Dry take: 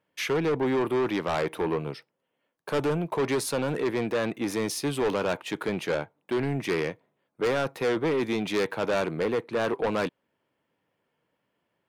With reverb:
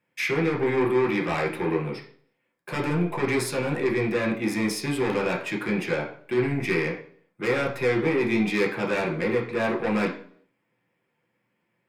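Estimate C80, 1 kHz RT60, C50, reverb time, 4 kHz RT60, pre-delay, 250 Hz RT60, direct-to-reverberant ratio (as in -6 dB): 13.0 dB, 0.50 s, 8.5 dB, 0.55 s, 0.50 s, 3 ms, 0.60 s, -0.5 dB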